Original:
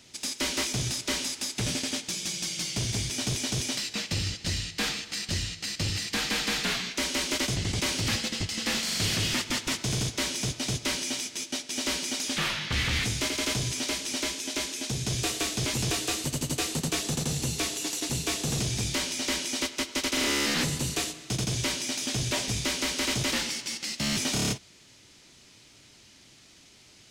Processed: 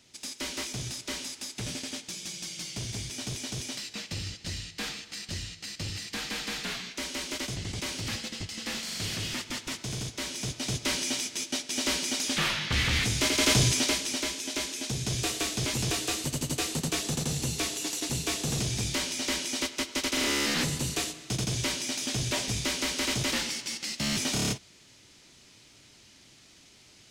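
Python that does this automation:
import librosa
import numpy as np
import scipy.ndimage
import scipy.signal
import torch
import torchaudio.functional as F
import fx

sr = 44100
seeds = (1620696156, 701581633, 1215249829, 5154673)

y = fx.gain(x, sr, db=fx.line((10.17, -6.0), (11.0, 1.0), (13.09, 1.0), (13.62, 7.5), (14.21, -1.0)))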